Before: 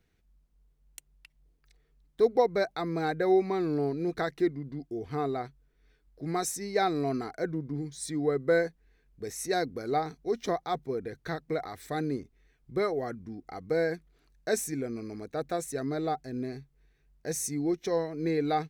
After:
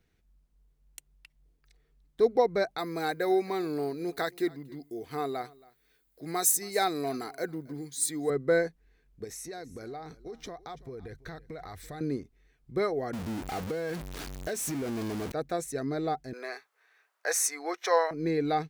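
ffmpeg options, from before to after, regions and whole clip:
ffmpeg -i in.wav -filter_complex "[0:a]asettb=1/sr,asplit=3[link_01][link_02][link_03];[link_01]atrim=end=2.784[link_04];[link_02]atrim=start=2.78:end=8.3,asetpts=PTS-STARTPTS,afade=type=in:duration=0.004:curve=qsin,afade=type=out:start_time=5.516:duration=0.004:curve=qsin,aemphasis=mode=production:type=bsi,bandreject=frequency=5600:width=8.1,aecho=1:1:274:0.0668,atrim=end_sample=243432[link_05];[link_03]atrim=start=8.296[link_06];[link_04][link_05]acrossfade=duration=0.004:curve1=hsin:curve2=qsin[link_07];[link_07][link_06]acrossfade=duration=0.004:curve1=qsin:curve2=hsin,asettb=1/sr,asplit=3[link_08][link_09][link_10];[link_08]atrim=end=9.244[link_11];[link_09]atrim=start=9.24:end=12.01,asetpts=PTS-STARTPTS,afade=type=in:duration=0.004:curve=qsin,afade=type=out:start_time=2.766:duration=0.004:curve=qsin,asubboost=boost=6:cutoff=110,acompressor=threshold=-38dB:ratio=6:attack=3.2:release=140:knee=1:detection=peak,aecho=1:1:333:0.106,atrim=end_sample=122157[link_12];[link_10]atrim=start=12.006[link_13];[link_11][link_12]acrossfade=duration=0.004:curve1=hsin:curve2=qsin[link_14];[link_14][link_13]acrossfade=duration=0.004:curve1=qsin:curve2=hsin,asettb=1/sr,asplit=3[link_15][link_16][link_17];[link_15]atrim=end=13.134[link_18];[link_16]atrim=start=13.13:end=15.32,asetpts=PTS-STARTPTS,afade=type=in:duration=0.004:curve=qsin,afade=type=out:start_time=2.186:duration=0.004:curve=qsin,aeval=exprs='val(0)+0.5*0.0251*sgn(val(0))':channel_layout=same,highpass=48,acompressor=threshold=-29dB:ratio=10:attack=3.2:release=140:knee=1:detection=peak[link_19];[link_17]atrim=start=15.316[link_20];[link_18][link_19]acrossfade=duration=0.004:curve1=hsin:curve2=qsin[link_21];[link_21][link_20]acrossfade=duration=0.004:curve1=qsin:curve2=hsin,asettb=1/sr,asplit=3[link_22][link_23][link_24];[link_22]atrim=end=16.334[link_25];[link_23]atrim=start=16.33:end=18.11,asetpts=PTS-STARTPTS,afade=type=in:duration=0.004:curve=qsin,afade=type=out:start_time=1.776:duration=0.004:curve=qsin,highpass=frequency=550:width=0.5412,highpass=frequency=550:width=1.3066,equalizer=frequency=1300:width_type=o:width=1.3:gain=11,acontrast=46[link_26];[link_24]atrim=start=18.106[link_27];[link_25][link_26]acrossfade=duration=0.004:curve1=hsin:curve2=qsin[link_28];[link_28][link_27]acrossfade=duration=0.004:curve1=qsin:curve2=hsin" out.wav

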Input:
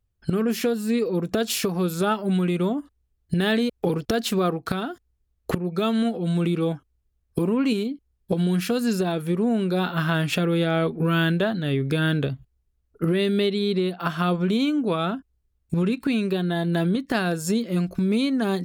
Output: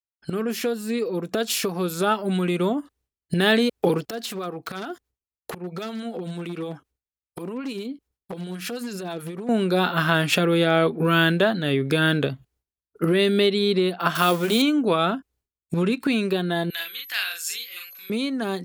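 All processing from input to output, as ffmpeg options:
ffmpeg -i in.wav -filter_complex "[0:a]asettb=1/sr,asplit=3[link_01][link_02][link_03];[link_01]atrim=end=4.064[link_04];[link_02]atrim=start=4.06:end=9.49,asetpts=PTS-STARTPTS,afade=type=in:duration=0.004:curve=qsin,afade=type=out:start_time=5.426:duration=0.004:curve=qsin,acompressor=threshold=-28dB:ratio=10:attack=3.2:release=140:knee=1:detection=peak,acrossover=split=650[link_05][link_06];[link_05]aeval=exprs='val(0)*(1-0.5/2+0.5/2*cos(2*PI*9.4*n/s))':channel_layout=same[link_07];[link_06]aeval=exprs='val(0)*(1-0.5/2-0.5/2*cos(2*PI*9.4*n/s))':channel_layout=same[link_08];[link_07][link_08]amix=inputs=2:normalize=0,aeval=exprs='0.0422*(abs(mod(val(0)/0.0422+3,4)-2)-1)':channel_layout=same[link_09];[link_03]atrim=start=9.486[link_10];[link_04][link_09]acrossfade=duration=0.004:curve1=hsin:curve2=qsin[link_11];[link_11][link_10]acrossfade=duration=0.004:curve1=qsin:curve2=hsin,asettb=1/sr,asplit=3[link_12][link_13][link_14];[link_12]atrim=end=14.154[link_15];[link_13]atrim=start=14.15:end=14.62,asetpts=PTS-STARTPTS,afade=type=in:duration=0.004:curve=qsin,afade=type=out:start_time=0.466:duration=0.004:curve=qsin,aeval=exprs='val(0)+0.5*0.015*sgn(val(0))':channel_layout=same,aemphasis=mode=production:type=50kf,bandreject=frequency=190:width=5.7[link_16];[link_14]atrim=start=14.616[link_17];[link_15][link_16]acrossfade=duration=0.004:curve1=hsin:curve2=qsin[link_18];[link_18][link_17]acrossfade=duration=0.004:curve1=qsin:curve2=hsin,asettb=1/sr,asplit=3[link_19][link_20][link_21];[link_19]atrim=end=16.704[link_22];[link_20]atrim=start=16.7:end=18.1,asetpts=PTS-STARTPTS,afade=type=in:duration=0.004:curve=qsin,afade=type=out:start_time=1.396:duration=0.004:curve=qsin,highpass=frequency=2400:width_type=q:width=1.6,aeval=exprs='val(0)+0.00447*sin(2*PI*12000*n/s)':channel_layout=same,asplit=2[link_23][link_24];[link_24]adelay=42,volume=-2dB[link_25];[link_23][link_25]amix=inputs=2:normalize=0,atrim=end_sample=61740[link_26];[link_21]atrim=start=18.096[link_27];[link_22][link_26]acrossfade=duration=0.004:curve1=hsin:curve2=qsin[link_28];[link_28][link_27]acrossfade=duration=0.004:curve1=qsin:curve2=hsin,agate=range=-33dB:threshold=-56dB:ratio=3:detection=peak,highpass=frequency=300:poles=1,dynaudnorm=framelen=360:gausssize=13:maxgain=6.5dB" out.wav

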